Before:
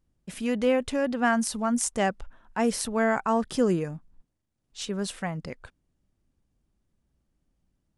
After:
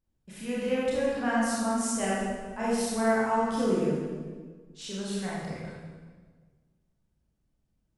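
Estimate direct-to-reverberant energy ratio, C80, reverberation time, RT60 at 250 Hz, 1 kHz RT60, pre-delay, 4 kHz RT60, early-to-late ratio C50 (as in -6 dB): -7.5 dB, 0.5 dB, 1.5 s, 1.9 s, 1.4 s, 26 ms, 1.2 s, -3.0 dB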